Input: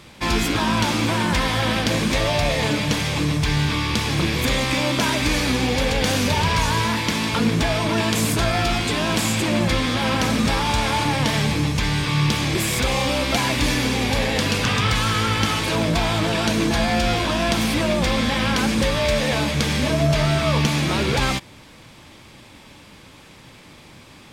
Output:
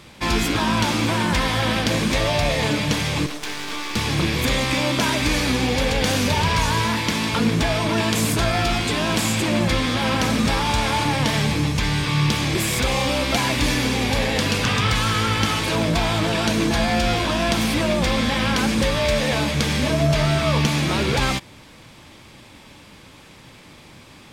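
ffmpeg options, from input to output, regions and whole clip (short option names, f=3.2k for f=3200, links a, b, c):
-filter_complex "[0:a]asettb=1/sr,asplit=3[a][b][c];[a]atrim=end=3.264[d];[b]atrim=start=3.26:end=3.96,asetpts=PTS-STARTPTS,afade=t=in:d=0.004:c=qsin,afade=t=out:st=0.696:d=0.004:c=qsin,highpass=f=270:w=0.5412,highpass=f=270:w=1.3066,aeval=exprs='max(val(0),0)':c=same[e];[c]atrim=start=3.956[f];[d][e]acrossfade=d=0.004:c1=hsin:c2=qsin[g];[g][f]acrossfade=d=0.004:c1=qsin:c2=hsin"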